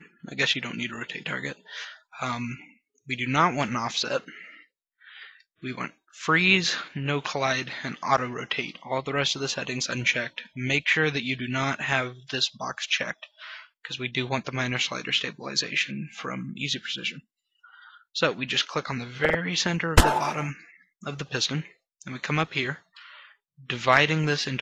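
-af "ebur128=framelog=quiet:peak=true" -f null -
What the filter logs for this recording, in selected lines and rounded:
Integrated loudness:
  I:         -26.4 LUFS
  Threshold: -37.3 LUFS
Loudness range:
  LRA:         4.2 LU
  Threshold: -47.4 LUFS
  LRA low:   -29.7 LUFS
  LRA high:  -25.5 LUFS
True peak:
  Peak:       -4.6 dBFS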